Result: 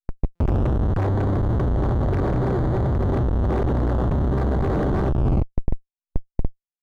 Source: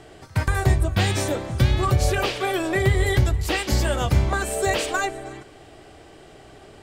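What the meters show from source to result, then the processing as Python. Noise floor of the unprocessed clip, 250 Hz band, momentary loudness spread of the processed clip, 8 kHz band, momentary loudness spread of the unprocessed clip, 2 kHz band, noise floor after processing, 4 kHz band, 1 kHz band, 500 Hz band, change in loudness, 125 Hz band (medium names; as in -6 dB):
-47 dBFS, +4.5 dB, 11 LU, under -25 dB, 7 LU, -13.0 dB, under -85 dBFS, under -15 dB, -3.0 dB, -0.5 dB, -0.5 dB, +1.5 dB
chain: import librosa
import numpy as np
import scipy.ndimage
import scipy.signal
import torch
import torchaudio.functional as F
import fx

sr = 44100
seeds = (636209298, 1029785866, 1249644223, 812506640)

p1 = fx.bin_compress(x, sr, power=0.4)
p2 = p1 + fx.echo_stepped(p1, sr, ms=333, hz=1100.0, octaves=0.7, feedback_pct=70, wet_db=-9.0, dry=0)
p3 = fx.dynamic_eq(p2, sr, hz=4100.0, q=1.2, threshold_db=-36.0, ratio=4.0, max_db=5)
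p4 = fx.schmitt(p3, sr, flips_db=-13.5)
p5 = fx.spacing_loss(p4, sr, db_at_10k=29)
p6 = fx.rider(p5, sr, range_db=4, speed_s=0.5)
p7 = fx.buffer_glitch(p6, sr, at_s=(0.35,), block=256, repeats=8)
p8 = fx.slew_limit(p7, sr, full_power_hz=97.0)
y = p8 * 10.0 ** (-2.5 / 20.0)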